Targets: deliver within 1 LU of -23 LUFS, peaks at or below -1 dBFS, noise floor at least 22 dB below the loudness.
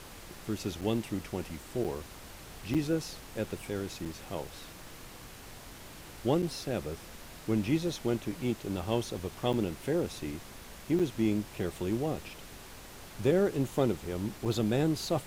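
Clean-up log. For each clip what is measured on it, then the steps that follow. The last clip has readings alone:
dropouts 8; longest dropout 6.7 ms; noise floor -49 dBFS; noise floor target -55 dBFS; loudness -33.0 LUFS; peak level -14.5 dBFS; loudness target -23.0 LUFS
-> interpolate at 0.81/1.84/2.74/4.05/6.42/9.53/10.99/14.45 s, 6.7 ms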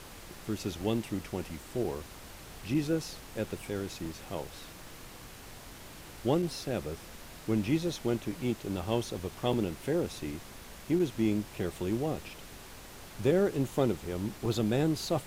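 dropouts 0; noise floor -49 dBFS; noise floor target -55 dBFS
-> noise print and reduce 6 dB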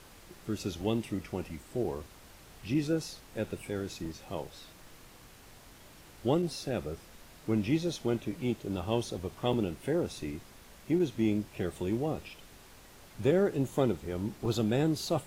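noise floor -55 dBFS; loudness -33.0 LUFS; peak level -14.5 dBFS; loudness target -23.0 LUFS
-> trim +10 dB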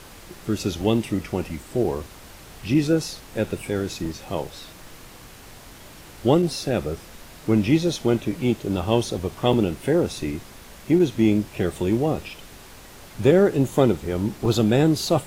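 loudness -23.0 LUFS; peak level -4.5 dBFS; noise floor -45 dBFS

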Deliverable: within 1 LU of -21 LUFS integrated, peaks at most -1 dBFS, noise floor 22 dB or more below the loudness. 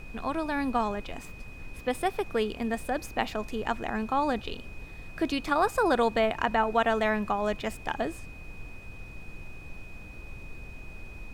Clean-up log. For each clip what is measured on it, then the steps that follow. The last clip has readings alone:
steady tone 2.5 kHz; tone level -48 dBFS; noise floor -45 dBFS; noise floor target -51 dBFS; loudness -29.0 LUFS; peak level -10.5 dBFS; loudness target -21.0 LUFS
-> band-stop 2.5 kHz, Q 30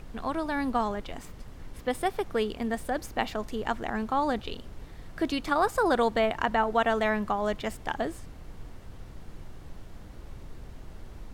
steady tone not found; noise floor -46 dBFS; noise floor target -51 dBFS
-> noise print and reduce 6 dB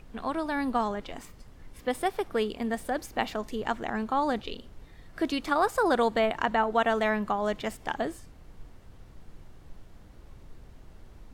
noise floor -51 dBFS; loudness -29.0 LUFS; peak level -10.5 dBFS; loudness target -21.0 LUFS
-> trim +8 dB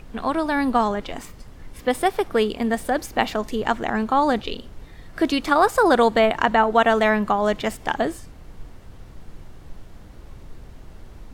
loudness -21.0 LUFS; peak level -2.5 dBFS; noise floor -43 dBFS

